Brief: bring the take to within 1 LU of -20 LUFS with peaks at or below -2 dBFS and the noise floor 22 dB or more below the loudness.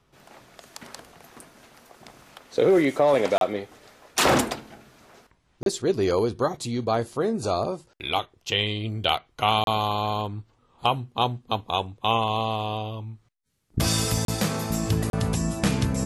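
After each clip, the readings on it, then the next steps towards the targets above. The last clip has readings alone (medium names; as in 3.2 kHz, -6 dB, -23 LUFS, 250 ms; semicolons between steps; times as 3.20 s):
dropouts 5; longest dropout 32 ms; loudness -25.0 LUFS; peak level -7.5 dBFS; loudness target -20.0 LUFS
-> interpolate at 3.38/5.63/9.64/14.25/15.10 s, 32 ms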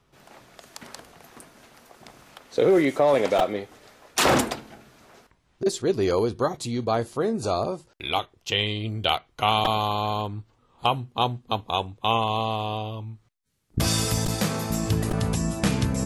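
dropouts 0; loudness -25.0 LUFS; peak level -7.5 dBFS; loudness target -20.0 LUFS
-> trim +5 dB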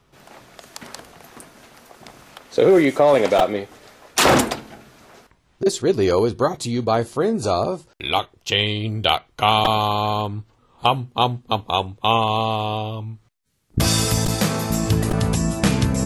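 loudness -20.0 LUFS; peak level -2.5 dBFS; noise floor -61 dBFS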